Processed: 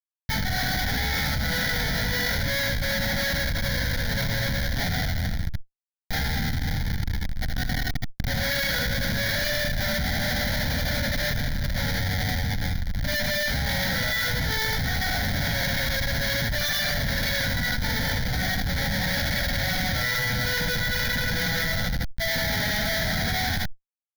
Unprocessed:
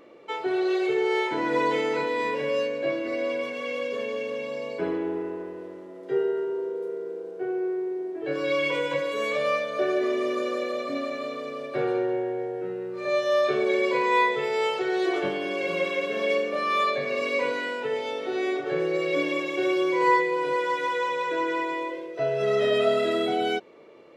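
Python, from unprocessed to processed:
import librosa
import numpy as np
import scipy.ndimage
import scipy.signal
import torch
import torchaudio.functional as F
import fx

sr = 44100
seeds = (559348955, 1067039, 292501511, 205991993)

p1 = fx.lower_of_two(x, sr, delay_ms=1.5)
p2 = fx.rider(p1, sr, range_db=5, speed_s=0.5)
p3 = p1 + (p2 * 10.0 ** (1.0 / 20.0))
p4 = fx.bass_treble(p3, sr, bass_db=-10, treble_db=7)
p5 = fx.granulator(p4, sr, seeds[0], grain_ms=137.0, per_s=21.0, spray_ms=11.0, spread_st=0)
p6 = fx.schmitt(p5, sr, flips_db=-26.0)
p7 = fx.band_shelf(p6, sr, hz=670.0, db=-12.5, octaves=1.7)
p8 = fx.fixed_phaser(p7, sr, hz=1800.0, stages=8)
p9 = fx.echo_multitap(p8, sr, ms=(68, 78), db=(-17.0, -9.0))
y = fx.env_flatten(p9, sr, amount_pct=100)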